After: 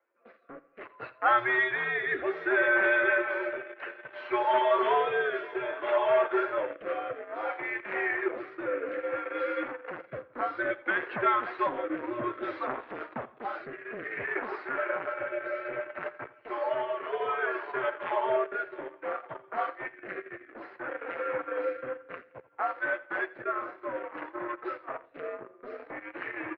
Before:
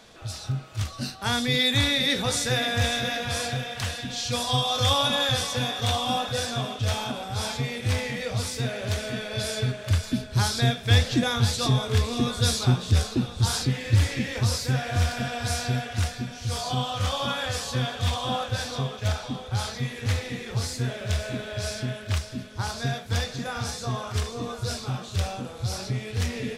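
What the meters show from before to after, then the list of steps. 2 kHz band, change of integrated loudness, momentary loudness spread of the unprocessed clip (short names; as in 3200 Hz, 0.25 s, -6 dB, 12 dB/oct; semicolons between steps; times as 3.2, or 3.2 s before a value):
+2.0 dB, -4.5 dB, 9 LU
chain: per-bin expansion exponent 1.5; in parallel at -4.5 dB: fuzz box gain 33 dB, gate -41 dBFS; on the sum: tilt shelf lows -4.5 dB, about 1300 Hz; mistuned SSB -120 Hz 490–2000 Hz; on a send: feedback echo 85 ms, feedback 41%, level -19 dB; on the sum: rotary speaker horn 0.6 Hz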